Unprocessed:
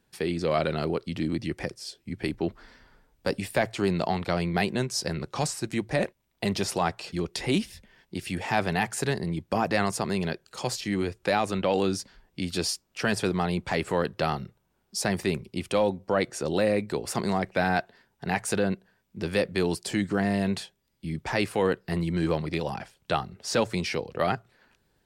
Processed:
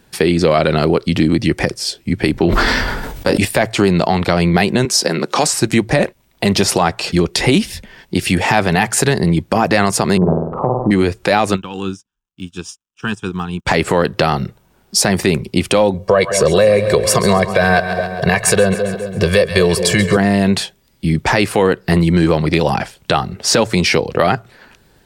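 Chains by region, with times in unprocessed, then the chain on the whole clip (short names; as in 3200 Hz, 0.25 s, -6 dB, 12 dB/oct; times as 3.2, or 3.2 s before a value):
2.33–3.45 doubler 23 ms -6 dB + sustainer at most 34 dB/s
4.85–5.53 upward compressor, threshold -31 dBFS + HPF 200 Hz 24 dB/oct
10.17–10.91 steep low-pass 1200 Hz 72 dB/oct + upward compressor, threshold -37 dBFS + flutter echo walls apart 8.5 m, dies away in 0.69 s
11.55–13.65 crackle 180/s -44 dBFS + fixed phaser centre 3000 Hz, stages 8 + upward expander 2.5:1, over -50 dBFS
15.94–20.17 comb 1.8 ms, depth 98% + split-band echo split 680 Hz, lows 0.208 s, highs 0.135 s, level -13 dB
whole clip: compressor 4:1, threshold -27 dBFS; maximiser +19 dB; gain -1 dB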